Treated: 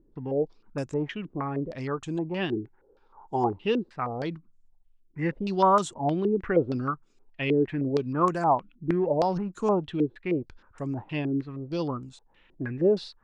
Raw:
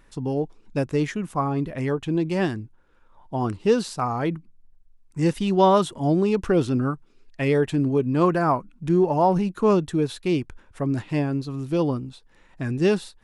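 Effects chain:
0:02.52–0:03.53: hollow resonant body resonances 410/810 Hz, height 15 dB, ringing for 40 ms
low-pass on a step sequencer 6.4 Hz 350–7,200 Hz
level −7.5 dB

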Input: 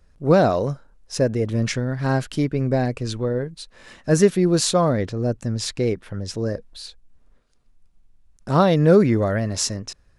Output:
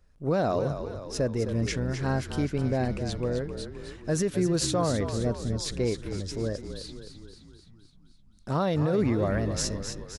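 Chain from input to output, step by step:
time-frequency box erased 0:05.41–0:05.65, 840–3,200 Hz
brickwall limiter −11.5 dBFS, peak gain reduction 8.5 dB
echo with shifted repeats 260 ms, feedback 60%, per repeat −45 Hz, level −9 dB
level −6 dB

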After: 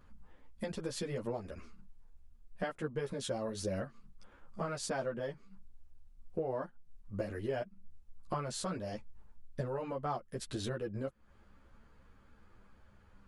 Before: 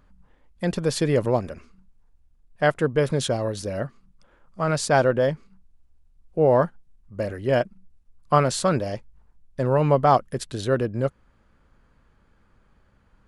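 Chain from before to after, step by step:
downward compressor 6 to 1, threshold −33 dBFS, peak gain reduction 19 dB
string-ensemble chorus
level +1.5 dB

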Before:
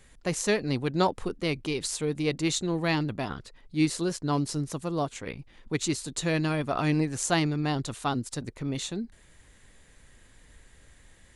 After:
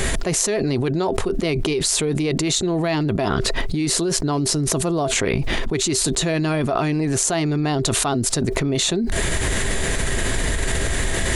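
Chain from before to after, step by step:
hollow resonant body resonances 390/660 Hz, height 11 dB, ringing for 90 ms
envelope flattener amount 100%
level −3.5 dB

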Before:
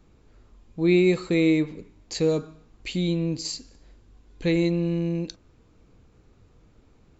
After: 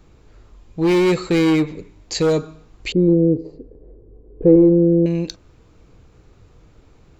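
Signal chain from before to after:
parametric band 230 Hz −5.5 dB 0.47 octaves
hard clipping −20 dBFS, distortion −12 dB
0:02.92–0:05.06: low-pass with resonance 440 Hz, resonance Q 4.9
level +7.5 dB

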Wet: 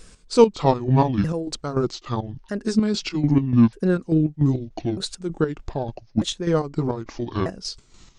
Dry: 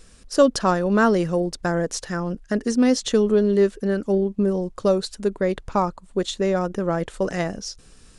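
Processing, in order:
pitch shifter swept by a sawtooth −10 semitones, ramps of 1,243 ms
square-wave tremolo 3.4 Hz, depth 60%, duty 50%
level +3 dB

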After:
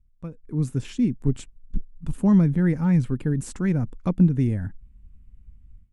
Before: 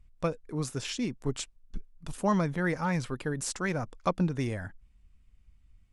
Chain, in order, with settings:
drawn EQ curve 240 Hz 0 dB, 640 Hz −16 dB, 920 Hz −12 dB, 2,800 Hz −16 dB, 5,200 Hz −22 dB, 8,200 Hz −15 dB
automatic gain control gain up to 16.5 dB
dynamic equaliser 1,100 Hz, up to −7 dB, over −43 dBFS, Q 2
level −4.5 dB

